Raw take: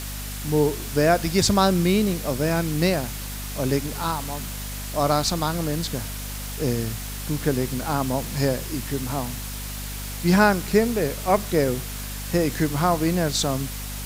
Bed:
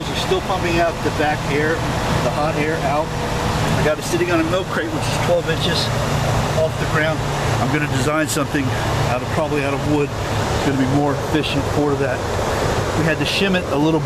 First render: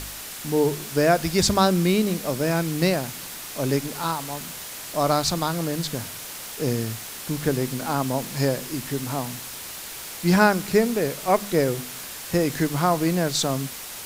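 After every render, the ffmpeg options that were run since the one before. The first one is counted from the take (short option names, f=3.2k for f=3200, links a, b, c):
-af "bandreject=f=50:t=h:w=4,bandreject=f=100:t=h:w=4,bandreject=f=150:t=h:w=4,bandreject=f=200:t=h:w=4,bandreject=f=250:t=h:w=4"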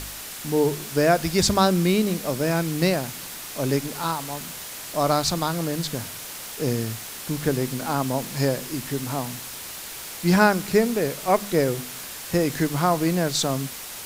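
-af anull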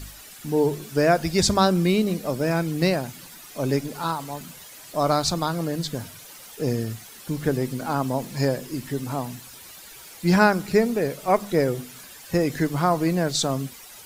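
-af "afftdn=nr=11:nf=-37"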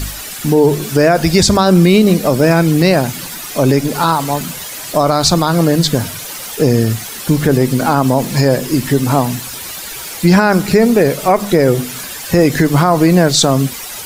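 -filter_complex "[0:a]asplit=2[a][b];[b]acompressor=threshold=-27dB:ratio=6,volume=-2.5dB[c];[a][c]amix=inputs=2:normalize=0,alimiter=level_in=12dB:limit=-1dB:release=50:level=0:latency=1"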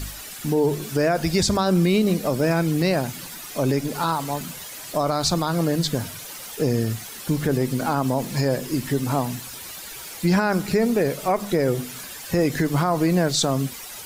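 -af "volume=-10dB"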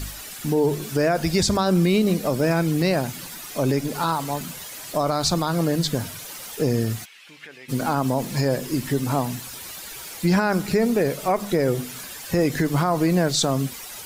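-filter_complex "[0:a]asplit=3[a][b][c];[a]afade=t=out:st=7.04:d=0.02[d];[b]bandpass=f=2.5k:t=q:w=2.8,afade=t=in:st=7.04:d=0.02,afade=t=out:st=7.68:d=0.02[e];[c]afade=t=in:st=7.68:d=0.02[f];[d][e][f]amix=inputs=3:normalize=0"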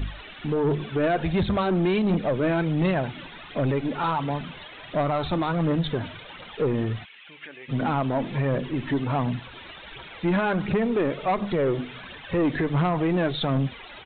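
-af "aphaser=in_gain=1:out_gain=1:delay=3.6:decay=0.4:speed=1.4:type=triangular,aresample=8000,asoftclip=type=tanh:threshold=-17.5dB,aresample=44100"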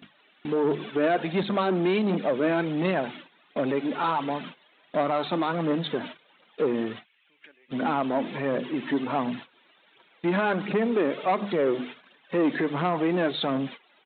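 -af "highpass=f=200:w=0.5412,highpass=f=200:w=1.3066,agate=range=-18dB:threshold=-38dB:ratio=16:detection=peak"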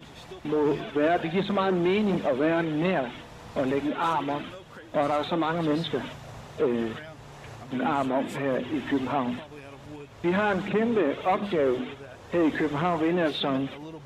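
-filter_complex "[1:a]volume=-24.5dB[a];[0:a][a]amix=inputs=2:normalize=0"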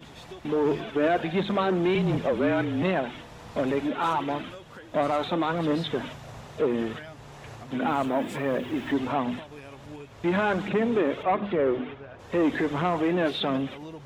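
-filter_complex "[0:a]asettb=1/sr,asplit=3[a][b][c];[a]atrim=end=1.954[d];[b]atrim=start=1.95:end=2.83,asetpts=PTS-STARTPTS,afade=t=in:d=0.004:c=qsin,afade=t=out:st=0.876:d=0.004:c=qsin,afreqshift=-36[e];[c]atrim=start=2.826[f];[d][e]acrossfade=d=0.004:c1=hsin:c2=qsin[g];[g][f]acrossfade=d=0.004:c1=qsin:c2=hsin,asettb=1/sr,asplit=3[h][i][j];[h]atrim=end=7.874[k];[i]atrim=start=7.87:end=8.92,asetpts=PTS-STARTPTS,afade=t=in:d=0.004:c=qsin,afade=t=out:st=1.046:d=0.004:c=qsin,acrusher=bits=8:mix=0:aa=0.5[l];[j]atrim=start=8.916[m];[k][l]acrossfade=d=0.004:c1=hsin:c2=qsin[n];[n][m]acrossfade=d=0.004:c1=qsin:c2=hsin,asplit=3[o][p][q];[o]afade=t=out:st=11.22:d=0.02[r];[p]lowpass=2.6k,afade=t=in:st=11.22:d=0.02,afade=t=out:st=12.18:d=0.02[s];[q]afade=t=in:st=12.18:d=0.02[t];[r][s][t]amix=inputs=3:normalize=0"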